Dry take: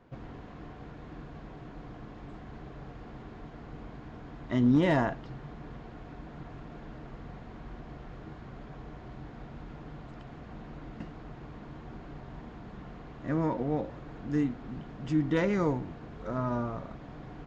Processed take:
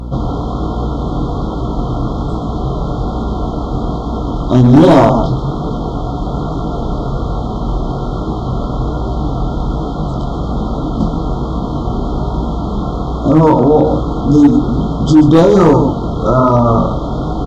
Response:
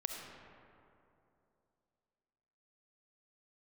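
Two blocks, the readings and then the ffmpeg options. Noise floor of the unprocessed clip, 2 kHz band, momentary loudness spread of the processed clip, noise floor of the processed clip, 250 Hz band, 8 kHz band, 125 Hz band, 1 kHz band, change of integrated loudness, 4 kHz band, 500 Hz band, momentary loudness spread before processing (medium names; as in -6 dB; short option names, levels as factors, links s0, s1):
-47 dBFS, +9.5 dB, 12 LU, -20 dBFS, +20.5 dB, no reading, +22.5 dB, +23.0 dB, +17.0 dB, +20.5 dB, +22.5 dB, 18 LU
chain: -af "bandreject=f=50:t=h:w=6,bandreject=f=100:t=h:w=6,bandreject=f=150:t=h:w=6,bandreject=f=200:t=h:w=6,bandreject=f=250:t=h:w=6,bandreject=f=300:t=h:w=6,afftfilt=real='re*(1-between(b*sr/4096,1400,3100))':imag='im*(1-between(b*sr/4096,1400,3100))':win_size=4096:overlap=0.75,aecho=1:1:129:0.299,flanger=delay=18:depth=6.6:speed=1.2,aeval=exprs='val(0)+0.00251*(sin(2*PI*60*n/s)+sin(2*PI*2*60*n/s)/2+sin(2*PI*3*60*n/s)/3+sin(2*PI*4*60*n/s)/4+sin(2*PI*5*60*n/s)/5)':c=same,asoftclip=type=hard:threshold=0.0531,alimiter=level_in=31.6:limit=0.891:release=50:level=0:latency=1" -ar 32000 -c:a libmp3lame -b:a 128k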